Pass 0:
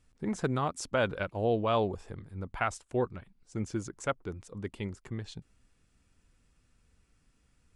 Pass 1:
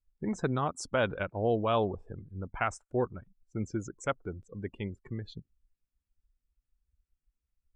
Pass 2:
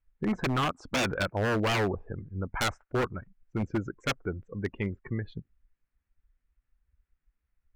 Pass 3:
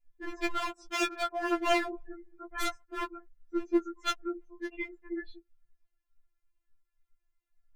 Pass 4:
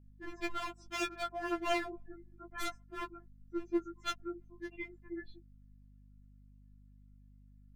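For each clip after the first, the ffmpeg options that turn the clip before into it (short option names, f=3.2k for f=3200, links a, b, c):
-af "afftdn=nr=26:nf=-47"
-af "lowpass=f=1.9k:t=q:w=1.9,aeval=exprs='0.0501*(abs(mod(val(0)/0.0501+3,4)-2)-1)':c=same,volume=5dB"
-af "afftfilt=real='re*4*eq(mod(b,16),0)':imag='im*4*eq(mod(b,16),0)':win_size=2048:overlap=0.75"
-af "aeval=exprs='val(0)+0.00251*(sin(2*PI*50*n/s)+sin(2*PI*2*50*n/s)/2+sin(2*PI*3*50*n/s)/3+sin(2*PI*4*50*n/s)/4+sin(2*PI*5*50*n/s)/5)':c=same,volume=-6dB"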